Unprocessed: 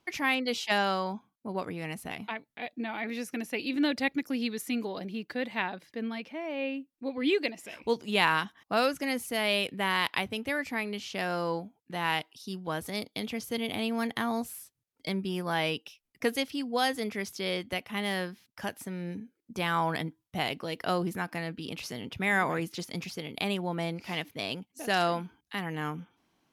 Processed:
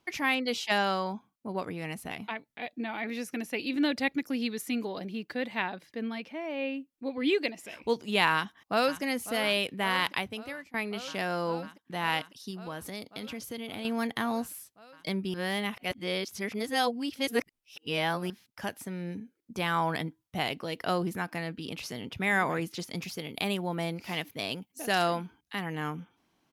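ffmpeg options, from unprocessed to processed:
-filter_complex "[0:a]asplit=2[a][b];[b]afade=t=in:st=8.32:d=0.01,afade=t=out:st=9.02:d=0.01,aecho=0:1:550|1100|1650|2200|2750|3300|3850|4400|4950|5500|6050|6600:0.199526|0.169597|0.144158|0.122534|0.104154|0.0885308|0.0752512|0.0639635|0.054369|0.0462137|0.0392816|0.0333894[c];[a][c]amix=inputs=2:normalize=0,asettb=1/sr,asplit=3[d][e][f];[d]atrim=end=12.504[g];[e]atrim=start=12.5:end=13.85,asetpts=PTS-STARTPTS,afade=t=in:d=0.004:c=qsin,afade=t=out:st=1.346:d=0.004:c=qsin,acompressor=threshold=-36dB:ratio=2.5:attack=3.2:release=140:knee=1:detection=peak[h];[f]atrim=start=13.846[i];[g][h]acrossfade=d=0.004:c1=hsin:c2=qsin[j];[j][i]acrossfade=d=0.004:c1=qsin:c2=hsin,asettb=1/sr,asplit=3[k][l][m];[k]atrim=end=23.024[n];[l]atrim=start=23.02:end=25.16,asetpts=PTS-STARTPTS,afade=t=in:d=0.004:c=qsin,afade=t=out:st=2.136:d=0.004:c=qsin,highshelf=f=12k:g=10[o];[m]atrim=start=25.156[p];[n][o]acrossfade=d=0.004:c1=hsin:c2=qsin[q];[q][p]acrossfade=d=0.004:c1=qsin:c2=hsin,asplit=4[r][s][t][u];[r]atrim=end=10.74,asetpts=PTS-STARTPTS,afade=t=out:st=10.09:d=0.65:silence=0.0668344[v];[s]atrim=start=10.74:end=15.342,asetpts=PTS-STARTPTS,afade=t=in:d=0.004:c=hsin:silence=0.0668344[w];[t]atrim=start=15.338:end=18.302,asetpts=PTS-STARTPTS,areverse[x];[u]atrim=start=18.298[y];[v][w]concat=n=2:v=0:a=1[z];[z][x]acrossfade=d=0.004:c1=hsin:c2=hsin[aa];[aa][y]acrossfade=d=0.004:c1=hsin:c2=hsin"

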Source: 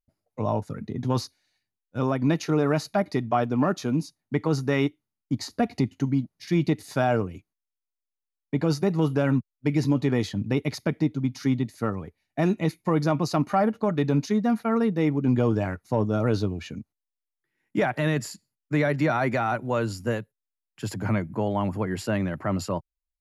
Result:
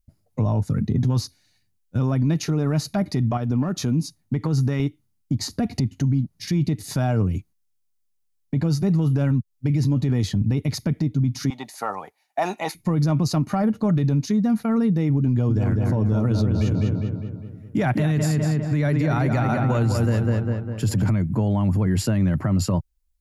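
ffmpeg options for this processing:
-filter_complex "[0:a]asettb=1/sr,asplit=3[a][b][c];[a]atrim=end=3.374[d];[b]atrim=start=3.37:end=4.8,asetpts=PTS-STARTPTS,afade=t=in:d=0.004:c=qsin,afade=t=out:st=1.426:d=0.004:c=qsin,acompressor=threshold=-32dB:ratio=4:attack=3.2:release=140:knee=1:detection=peak[e];[c]atrim=start=4.796[f];[d][e]acrossfade=d=0.004:c1=hsin:c2=qsin[g];[g][f]acrossfade=d=0.004:c1=qsin:c2=hsin,asettb=1/sr,asplit=3[h][i][j];[h]atrim=end=11.504[k];[i]atrim=start=11.5:end=12.75,asetpts=PTS-STARTPTS,afade=t=in:d=0.004:c=qsin,afade=t=out:st=1.246:d=0.004:c=qsin,highpass=f=800:t=q:w=4.4[l];[j]atrim=start=12.746[m];[k][l]acrossfade=d=0.004:c1=hsin:c2=qsin[n];[n][m]acrossfade=d=0.004:c1=qsin:c2=hsin,asettb=1/sr,asplit=3[o][p][q];[o]atrim=end=15.294[r];[p]atrim=start=15.29:end=21.1,asetpts=PTS-STARTPTS,afade=t=in:d=0.004:c=qsin,afade=t=out:st=5.806:d=0.004:c=qsin,asplit=2[s][t];[t]adelay=202,lowpass=f=3.1k:p=1,volume=-5.5dB,asplit=2[u][v];[v]adelay=202,lowpass=f=3.1k:p=1,volume=0.53,asplit=2[w][x];[x]adelay=202,lowpass=f=3.1k:p=1,volume=0.53,asplit=2[y][z];[z]adelay=202,lowpass=f=3.1k:p=1,volume=0.53,asplit=2[aa][ab];[ab]adelay=202,lowpass=f=3.1k:p=1,volume=0.53,asplit=2[ac][ad];[ad]adelay=202,lowpass=f=3.1k:p=1,volume=0.53,asplit=2[ae][af];[af]adelay=202,lowpass=f=3.1k:p=1,volume=0.53[ag];[s][u][w][y][aa][ac][ae][ag]amix=inputs=8:normalize=0,atrim=end_sample=256221[ah];[q]atrim=start=21.096[ai];[r][ah]acrossfade=d=0.004:c1=hsin:c2=qsin[aj];[aj][ai]acrossfade=d=0.004:c1=qsin:c2=hsin,bass=f=250:g=14,treble=f=4k:g=6,acompressor=threshold=-18dB:ratio=6,alimiter=limit=-18.5dB:level=0:latency=1:release=12,volume=4.5dB"

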